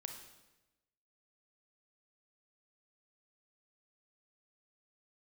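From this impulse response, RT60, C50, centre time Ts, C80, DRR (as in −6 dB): 1.0 s, 6.0 dB, 28 ms, 8.5 dB, 4.5 dB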